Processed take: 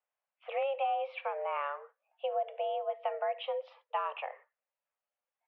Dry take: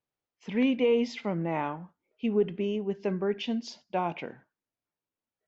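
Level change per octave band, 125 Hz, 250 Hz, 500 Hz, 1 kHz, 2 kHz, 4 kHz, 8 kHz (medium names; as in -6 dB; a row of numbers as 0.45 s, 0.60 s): under -40 dB, under -40 dB, -5.5 dB, +2.5 dB, -4.0 dB, -6.5 dB, no reading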